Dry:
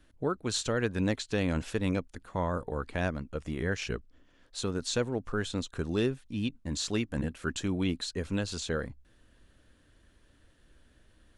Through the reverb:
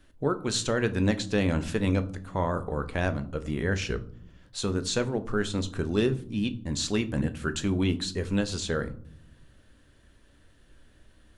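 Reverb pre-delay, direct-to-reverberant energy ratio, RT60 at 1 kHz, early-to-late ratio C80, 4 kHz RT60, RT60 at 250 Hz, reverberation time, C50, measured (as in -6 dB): 5 ms, 9.5 dB, 0.60 s, 21.0 dB, 0.35 s, 1.2 s, 0.70 s, 17.0 dB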